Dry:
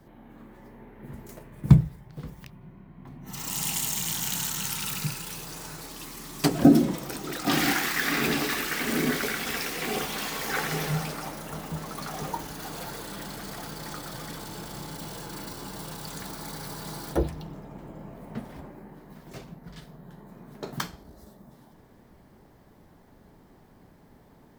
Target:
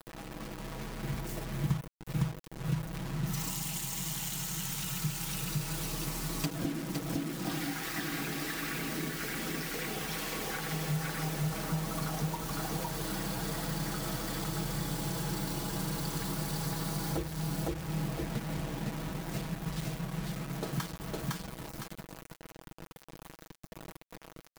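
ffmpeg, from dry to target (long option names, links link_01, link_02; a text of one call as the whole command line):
ffmpeg -i in.wav -af "aecho=1:1:508|1016|1524:0.708|0.156|0.0343,acompressor=threshold=-35dB:ratio=20,lowshelf=frequency=230:gain=7,acrusher=bits=6:mix=0:aa=0.000001,aecho=1:1:6.2:0.51" out.wav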